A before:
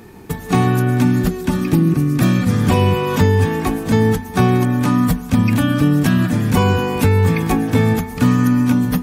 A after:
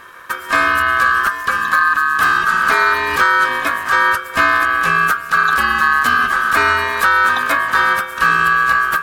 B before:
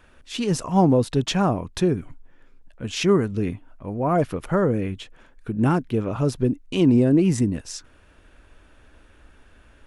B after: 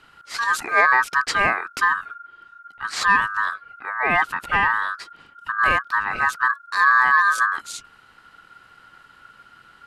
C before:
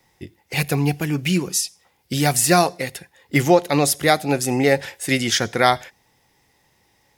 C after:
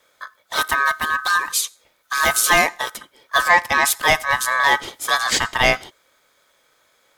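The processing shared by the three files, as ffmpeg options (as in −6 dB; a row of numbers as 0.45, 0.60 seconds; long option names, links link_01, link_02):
-af "aeval=exprs='val(0)*sin(2*PI*1400*n/s)':channel_layout=same,acontrast=39,volume=-1.5dB"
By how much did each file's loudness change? +2.0, +2.5, +1.5 LU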